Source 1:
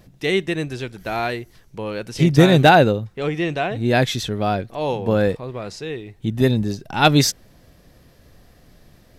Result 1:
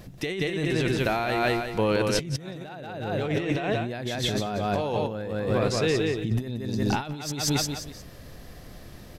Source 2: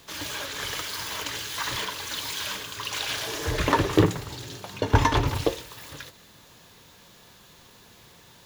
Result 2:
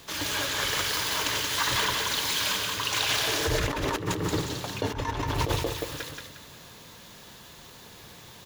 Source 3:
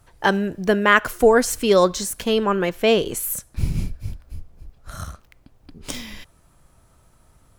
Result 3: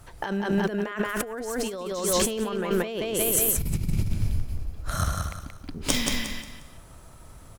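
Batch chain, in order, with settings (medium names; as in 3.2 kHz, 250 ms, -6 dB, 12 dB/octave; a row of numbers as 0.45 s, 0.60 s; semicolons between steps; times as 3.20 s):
on a send: feedback delay 178 ms, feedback 33%, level -4 dB; on the sum: compressor with a negative ratio -27 dBFS, ratio -1; normalise loudness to -27 LUFS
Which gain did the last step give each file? -2.0 dB, +0.5 dB, 0.0 dB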